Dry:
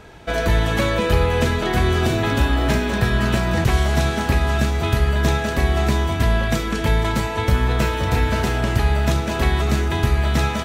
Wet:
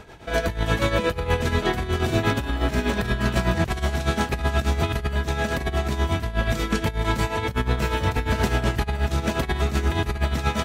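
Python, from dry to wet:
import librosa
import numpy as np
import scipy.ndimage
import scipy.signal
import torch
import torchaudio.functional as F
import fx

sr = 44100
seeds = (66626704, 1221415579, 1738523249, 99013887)

y = fx.over_compress(x, sr, threshold_db=-19.0, ratio=-0.5)
y = y * (1.0 - 0.69 / 2.0 + 0.69 / 2.0 * np.cos(2.0 * np.pi * 8.3 * (np.arange(len(y)) / sr)))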